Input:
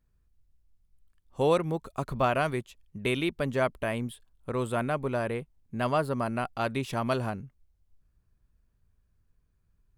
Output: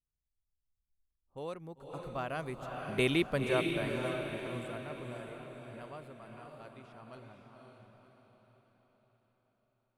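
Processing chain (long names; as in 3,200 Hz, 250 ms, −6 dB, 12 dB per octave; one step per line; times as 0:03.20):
source passing by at 0:03.15, 8 m/s, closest 1.9 metres
low-pass that shuts in the quiet parts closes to 900 Hz, open at −46.5 dBFS
feedback delay with all-pass diffusion 532 ms, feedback 48%, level −3.5 dB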